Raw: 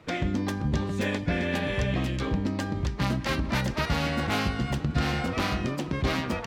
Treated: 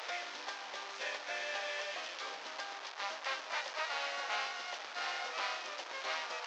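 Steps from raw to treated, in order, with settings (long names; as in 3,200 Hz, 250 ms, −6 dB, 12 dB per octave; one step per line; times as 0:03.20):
linear delta modulator 32 kbit/s, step −28 dBFS
high-pass filter 610 Hz 24 dB per octave
level −7 dB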